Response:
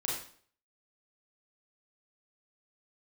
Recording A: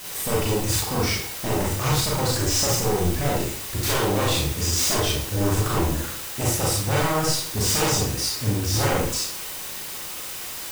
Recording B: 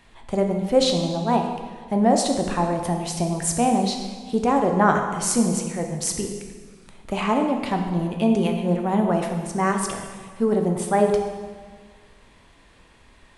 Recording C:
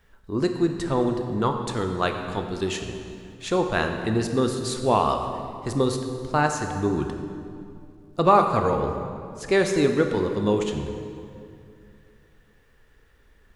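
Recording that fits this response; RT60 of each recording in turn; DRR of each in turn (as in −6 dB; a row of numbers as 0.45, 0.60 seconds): A; 0.50, 1.6, 2.5 seconds; −4.5, 3.0, 4.5 decibels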